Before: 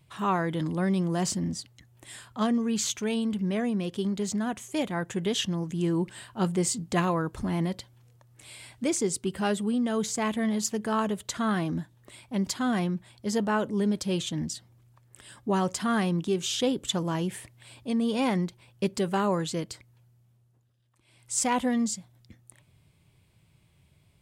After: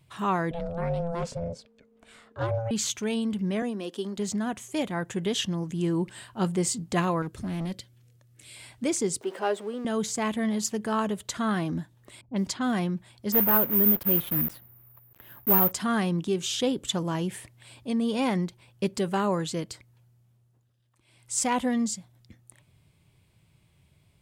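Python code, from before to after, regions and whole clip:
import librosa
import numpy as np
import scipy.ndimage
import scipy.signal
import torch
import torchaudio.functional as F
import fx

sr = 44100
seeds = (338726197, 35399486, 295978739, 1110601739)

y = fx.chain(x, sr, fx.lowpass(hz=2000.0, slope=6),
    fx.ring_mod(carrier_hz=340.0),
    fx.doppler_dist(depth_ms=0.1), at=(0.51, 2.71))
y = fx.chain(y, sr, fx.highpass(hz=240.0, slope=24),
    fx.peak_eq(hz=2200.0, db=-7.0, octaves=0.23), at=(3.62, 4.18))
y = fx.chain(y, sr, fx.highpass(hz=70.0, slope=12),
    fx.peak_eq(hz=900.0, db=-12.5, octaves=1.0),
    fx.clip_hard(threshold_db=-28.5), at=(7.22, 8.56))
y = fx.chain(y, sr, fx.zero_step(step_db=-38.5),
    fx.highpass(hz=410.0, slope=24),
    fx.tilt_eq(slope=-3.5), at=(9.21, 9.85))
y = fx.chain(y, sr, fx.block_float(bits=7),
    fx.env_lowpass(base_hz=300.0, full_db=-24.0), at=(12.21, 12.73))
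y = fx.chain(y, sr, fx.block_float(bits=3),
    fx.lowpass(hz=2100.0, slope=12),
    fx.resample_bad(factor=3, down='none', up='zero_stuff'), at=(13.32, 15.72))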